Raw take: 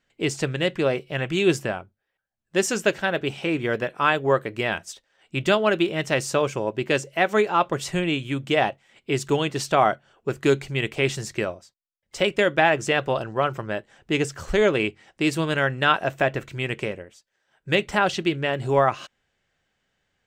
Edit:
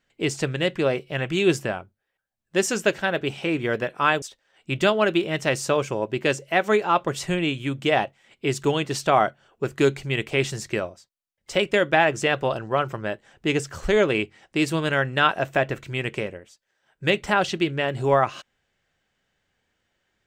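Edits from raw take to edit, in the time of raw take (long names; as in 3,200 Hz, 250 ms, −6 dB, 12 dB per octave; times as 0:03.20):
0:04.22–0:04.87: remove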